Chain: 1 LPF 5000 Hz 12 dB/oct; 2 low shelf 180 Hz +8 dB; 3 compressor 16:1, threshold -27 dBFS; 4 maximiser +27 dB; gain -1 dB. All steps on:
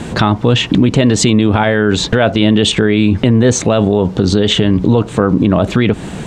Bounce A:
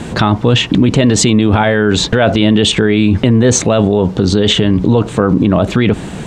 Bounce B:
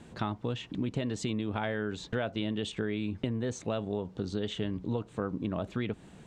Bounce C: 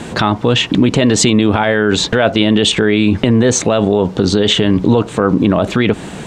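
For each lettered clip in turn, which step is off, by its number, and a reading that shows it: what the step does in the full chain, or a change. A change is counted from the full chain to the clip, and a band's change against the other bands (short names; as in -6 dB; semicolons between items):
3, mean gain reduction 5.0 dB; 4, crest factor change +5.5 dB; 2, 125 Hz band -4.0 dB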